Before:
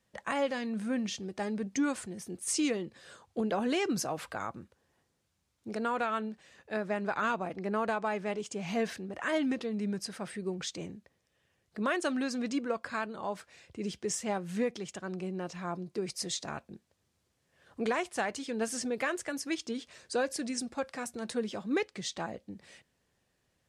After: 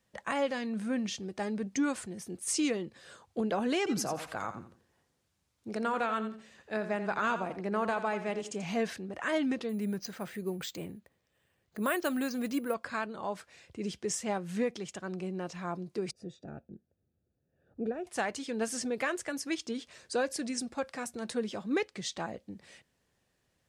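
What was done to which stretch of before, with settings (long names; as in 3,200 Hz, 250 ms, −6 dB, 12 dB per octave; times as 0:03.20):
0:03.78–0:08.64: repeating echo 86 ms, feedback 26%, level −11 dB
0:09.69–0:12.74: bad sample-rate conversion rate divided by 4×, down filtered, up hold
0:16.11–0:18.07: moving average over 42 samples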